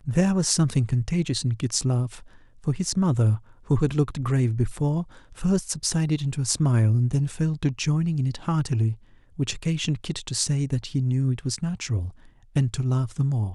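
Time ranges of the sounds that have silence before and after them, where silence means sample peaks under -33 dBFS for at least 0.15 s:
2.67–3.37 s
3.70–5.03 s
5.39–8.94 s
9.39–12.09 s

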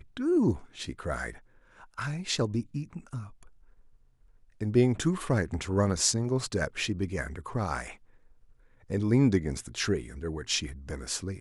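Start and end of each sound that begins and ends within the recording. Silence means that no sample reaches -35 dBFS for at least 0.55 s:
1.98–3.23 s
4.61–7.91 s

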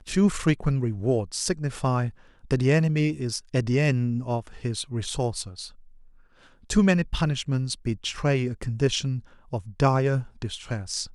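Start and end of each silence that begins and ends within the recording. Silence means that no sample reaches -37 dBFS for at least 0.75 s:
5.68–6.70 s

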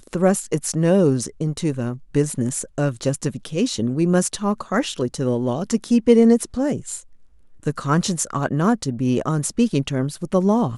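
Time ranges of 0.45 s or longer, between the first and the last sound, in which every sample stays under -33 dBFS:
7.00–7.63 s

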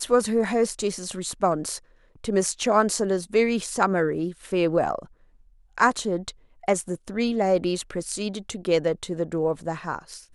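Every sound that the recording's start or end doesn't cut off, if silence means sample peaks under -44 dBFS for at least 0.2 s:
2.15–5.07 s
5.78–6.31 s

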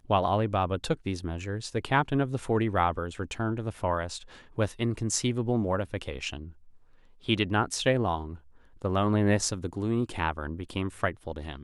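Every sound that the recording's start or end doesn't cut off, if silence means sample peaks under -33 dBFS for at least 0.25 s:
4.58–6.44 s
7.29–8.34 s

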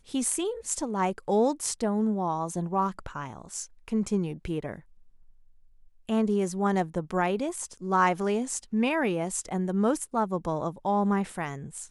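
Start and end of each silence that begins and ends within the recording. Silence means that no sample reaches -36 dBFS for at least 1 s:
4.79–6.09 s

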